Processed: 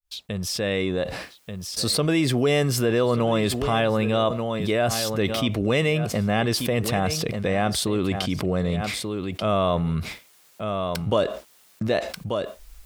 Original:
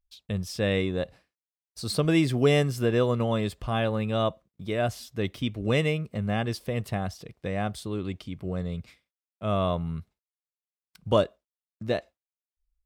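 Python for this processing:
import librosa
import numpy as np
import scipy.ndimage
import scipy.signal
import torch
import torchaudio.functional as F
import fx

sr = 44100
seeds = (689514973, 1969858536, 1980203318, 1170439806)

p1 = fx.fade_in_head(x, sr, length_s=2.46)
p2 = fx.low_shelf(p1, sr, hz=150.0, db=-9.0)
p3 = p2 + fx.echo_single(p2, sr, ms=1186, db=-17.5, dry=0)
y = fx.env_flatten(p3, sr, amount_pct=70)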